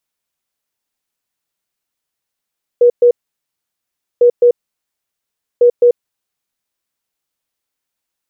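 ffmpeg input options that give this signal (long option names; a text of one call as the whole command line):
ffmpeg -f lavfi -i "aevalsrc='0.596*sin(2*PI*483*t)*clip(min(mod(mod(t,1.4),0.21),0.09-mod(mod(t,1.4),0.21))/0.005,0,1)*lt(mod(t,1.4),0.42)':duration=4.2:sample_rate=44100" out.wav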